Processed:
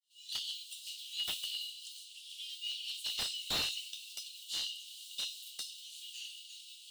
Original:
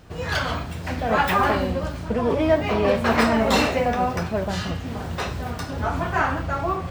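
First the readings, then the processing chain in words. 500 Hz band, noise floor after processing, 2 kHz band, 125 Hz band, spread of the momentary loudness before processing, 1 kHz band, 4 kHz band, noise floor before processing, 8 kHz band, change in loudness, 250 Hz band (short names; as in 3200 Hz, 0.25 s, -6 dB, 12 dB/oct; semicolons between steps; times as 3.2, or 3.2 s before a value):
-37.0 dB, -54 dBFS, -22.0 dB, -36.0 dB, 10 LU, -33.5 dB, -2.5 dB, -32 dBFS, -4.0 dB, -16.0 dB, -37.0 dB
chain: opening faded in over 0.61 s; rippled Chebyshev high-pass 2800 Hz, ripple 6 dB; slew limiter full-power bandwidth 77 Hz; gain +2.5 dB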